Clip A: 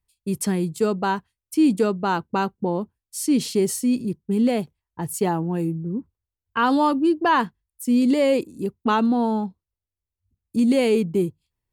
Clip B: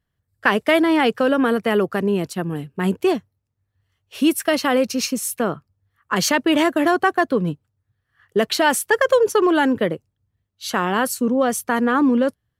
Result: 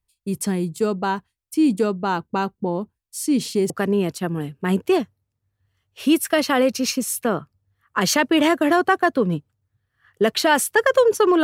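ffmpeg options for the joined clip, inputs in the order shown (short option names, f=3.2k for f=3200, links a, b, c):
-filter_complex "[0:a]apad=whole_dur=11.43,atrim=end=11.43,atrim=end=3.702[a];[1:a]atrim=start=1.848:end=9.58[b];[a][b]acrossfade=d=0.004:c1=hsin:c2=hsin"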